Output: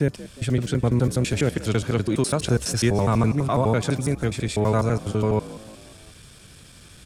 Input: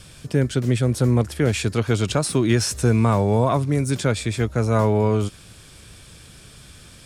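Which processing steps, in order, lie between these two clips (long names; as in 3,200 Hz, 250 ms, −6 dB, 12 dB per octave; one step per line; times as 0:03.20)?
slices reordered back to front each 83 ms, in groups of 5
echo with shifted repeats 178 ms, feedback 52%, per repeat +55 Hz, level −17.5 dB
level −2 dB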